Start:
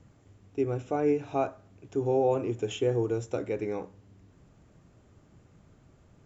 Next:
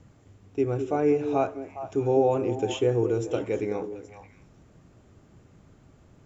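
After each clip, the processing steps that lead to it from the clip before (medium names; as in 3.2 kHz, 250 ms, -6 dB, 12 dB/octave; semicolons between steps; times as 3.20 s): repeats whose band climbs or falls 206 ms, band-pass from 330 Hz, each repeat 1.4 oct, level -6 dB; trim +3 dB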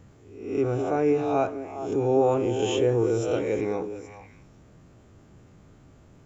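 reverse spectral sustain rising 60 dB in 0.67 s; transient shaper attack -2 dB, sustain +2 dB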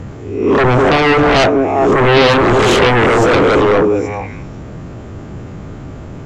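low-pass 2.7 kHz 6 dB/octave; in parallel at -7 dB: sine folder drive 17 dB, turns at -11 dBFS; on the sum: trim +8.5 dB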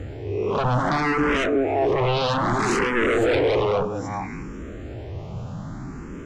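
compression 3:1, threshold -16 dBFS, peak gain reduction 8.5 dB; barber-pole phaser +0.62 Hz; trim -2 dB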